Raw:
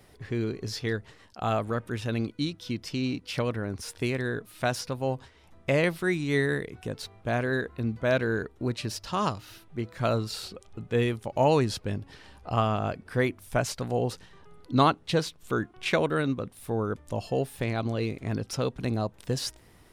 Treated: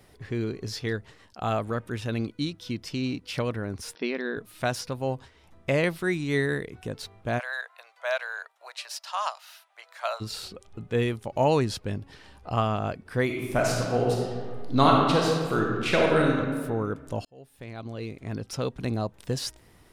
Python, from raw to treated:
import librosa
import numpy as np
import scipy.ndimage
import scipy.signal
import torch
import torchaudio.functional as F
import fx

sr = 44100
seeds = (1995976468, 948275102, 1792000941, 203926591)

y = fx.brickwall_bandpass(x, sr, low_hz=170.0, high_hz=5900.0, at=(3.95, 4.37))
y = fx.steep_highpass(y, sr, hz=630.0, slope=48, at=(7.38, 10.2), fade=0.02)
y = fx.reverb_throw(y, sr, start_s=13.24, length_s=3.11, rt60_s=1.7, drr_db=-2.0)
y = fx.edit(y, sr, fx.fade_in_span(start_s=17.25, length_s=1.54), tone=tone)